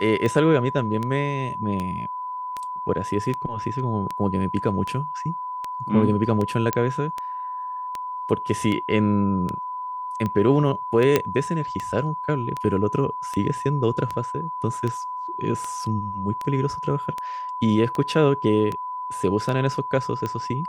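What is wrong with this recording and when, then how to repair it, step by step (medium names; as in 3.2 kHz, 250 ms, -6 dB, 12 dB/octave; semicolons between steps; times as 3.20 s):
tick 78 rpm -15 dBFS
whine 1 kHz -28 dBFS
6.73 s: pop -8 dBFS
11.16 s: pop -4 dBFS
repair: de-click; band-stop 1 kHz, Q 30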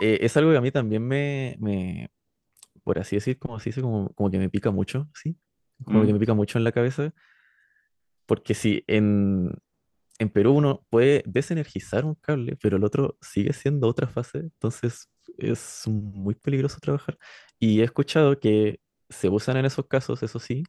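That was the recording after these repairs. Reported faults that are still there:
nothing left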